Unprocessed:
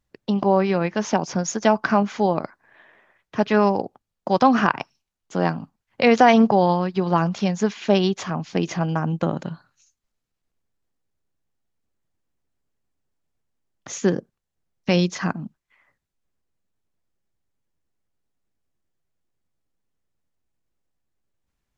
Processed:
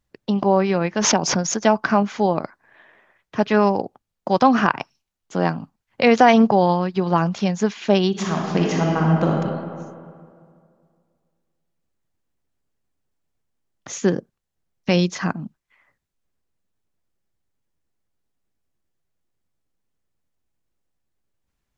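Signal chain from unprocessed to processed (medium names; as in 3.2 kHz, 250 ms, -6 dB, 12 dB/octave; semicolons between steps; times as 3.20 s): 0.99–1.61 s: swell ahead of each attack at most 39 dB/s; 8.09–9.29 s: reverb throw, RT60 2.2 s, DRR -1.5 dB; trim +1 dB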